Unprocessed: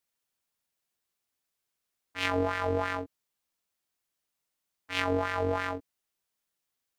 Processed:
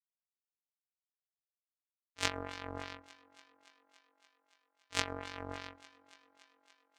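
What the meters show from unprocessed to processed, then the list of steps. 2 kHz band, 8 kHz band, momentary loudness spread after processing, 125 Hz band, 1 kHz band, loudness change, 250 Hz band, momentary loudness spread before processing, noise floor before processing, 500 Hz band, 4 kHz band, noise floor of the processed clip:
-8.5 dB, +5.5 dB, 23 LU, -12.0 dB, -11.0 dB, -9.5 dB, -12.5 dB, 11 LU, -84 dBFS, -15.0 dB, -2.5 dB, under -85 dBFS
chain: power-law waveshaper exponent 3; thinning echo 285 ms, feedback 74%, high-pass 210 Hz, level -20.5 dB; trim +4 dB

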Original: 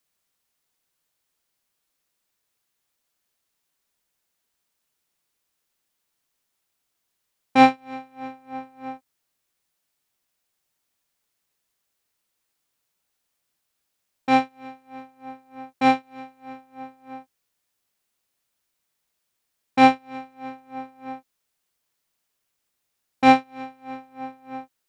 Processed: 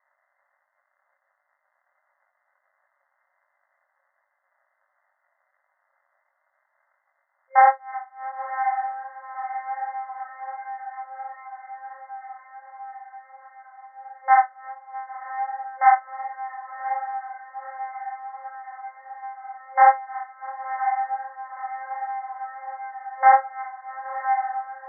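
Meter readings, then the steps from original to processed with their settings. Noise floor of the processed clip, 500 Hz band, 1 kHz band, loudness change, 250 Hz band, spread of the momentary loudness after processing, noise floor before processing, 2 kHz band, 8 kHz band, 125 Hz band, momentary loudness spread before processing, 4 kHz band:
-74 dBFS, -5.5 dB, +4.0 dB, -5.0 dB, under -40 dB, 22 LU, -78 dBFS, +0.5 dB, no reading, under -40 dB, 21 LU, under -40 dB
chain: crackle 270 per s -52 dBFS; echo that smears into a reverb 1031 ms, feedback 69%, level -11 dB; chorus 1.4 Hz, delay 19 ms, depth 5.6 ms; FFT band-pass 530–2100 Hz; loudness maximiser +12 dB; trim -3.5 dB

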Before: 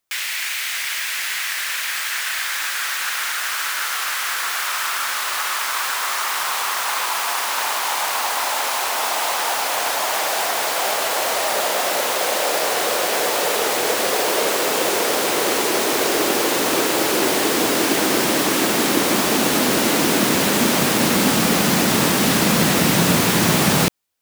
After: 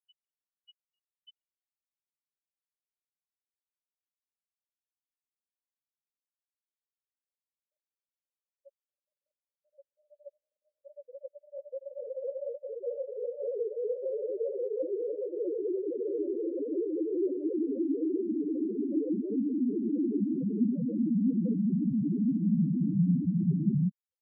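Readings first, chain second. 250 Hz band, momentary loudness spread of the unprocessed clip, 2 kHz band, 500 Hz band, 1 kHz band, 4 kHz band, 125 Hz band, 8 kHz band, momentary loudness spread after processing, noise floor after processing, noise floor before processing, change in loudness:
-7.0 dB, 6 LU, under -40 dB, -12.0 dB, under -40 dB, under -40 dB, -7.0 dB, under -40 dB, 10 LU, under -85 dBFS, -25 dBFS, -12.5 dB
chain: loudest bins only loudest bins 2; brick-wall FIR band-stop 580–2900 Hz; trim -2 dB

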